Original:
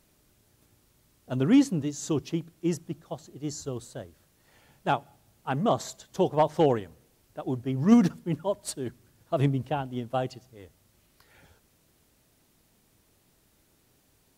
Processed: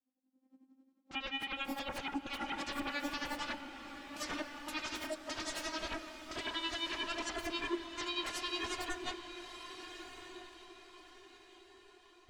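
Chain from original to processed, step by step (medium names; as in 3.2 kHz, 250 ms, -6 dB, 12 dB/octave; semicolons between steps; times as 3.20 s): vocoder on a note that slides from A3, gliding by +8 st; gate -54 dBFS, range -27 dB; level rider gain up to 14 dB; peak limiter -39 dBFS, peak gain reduction 38 dB; sine folder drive 18 dB, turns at -39 dBFS; tremolo 9.5 Hz, depth 70%; tape speed +17%; echo that smears into a reverb 1299 ms, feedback 52%, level -6.5 dB; on a send at -9 dB: reverberation RT60 4.5 s, pre-delay 63 ms; on the sum: spectral contrast expander 1.5:1; trim +6 dB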